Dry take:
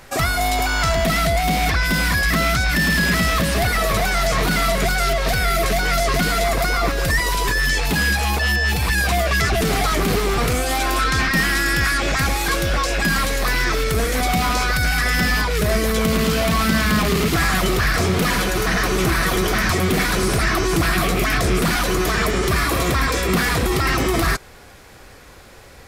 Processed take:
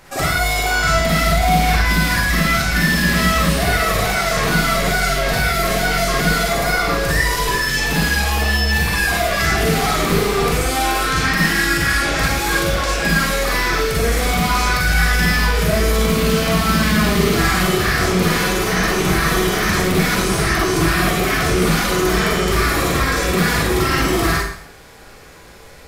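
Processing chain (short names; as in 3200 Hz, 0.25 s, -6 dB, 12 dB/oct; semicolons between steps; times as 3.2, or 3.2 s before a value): Schroeder reverb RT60 0.62 s, DRR -4.5 dB; gain -3.5 dB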